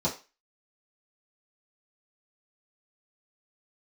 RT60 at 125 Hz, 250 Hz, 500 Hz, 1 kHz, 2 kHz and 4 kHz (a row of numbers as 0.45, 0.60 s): 0.20, 0.25, 0.30, 0.30, 0.30, 0.30 s